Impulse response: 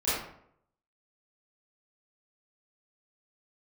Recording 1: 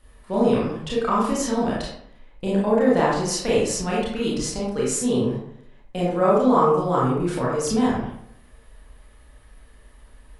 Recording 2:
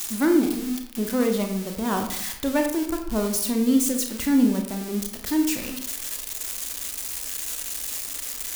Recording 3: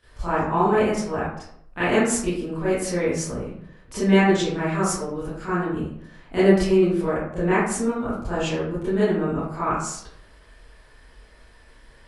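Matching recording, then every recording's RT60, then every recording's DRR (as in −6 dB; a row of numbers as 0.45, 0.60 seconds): 3; 0.70, 0.70, 0.70 seconds; −6.5, 3.5, −14.0 decibels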